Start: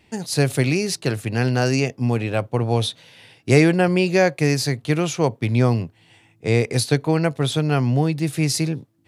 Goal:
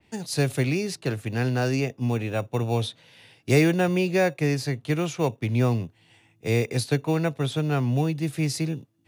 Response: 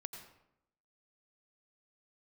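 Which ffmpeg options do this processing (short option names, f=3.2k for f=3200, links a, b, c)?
-filter_complex "[0:a]acrossover=split=290|610|1700[a][b][c][d];[b]acrusher=samples=14:mix=1:aa=0.000001[e];[a][e][c][d]amix=inputs=4:normalize=0,adynamicequalizer=threshold=0.0112:dfrequency=3000:dqfactor=0.7:tfrequency=3000:tqfactor=0.7:attack=5:release=100:ratio=0.375:range=3.5:mode=cutabove:tftype=highshelf,volume=-4.5dB"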